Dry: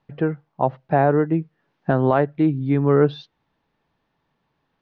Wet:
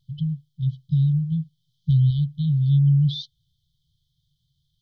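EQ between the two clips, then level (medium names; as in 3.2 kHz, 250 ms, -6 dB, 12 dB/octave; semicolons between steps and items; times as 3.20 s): brick-wall FIR band-stop 160–3000 Hz; +8.0 dB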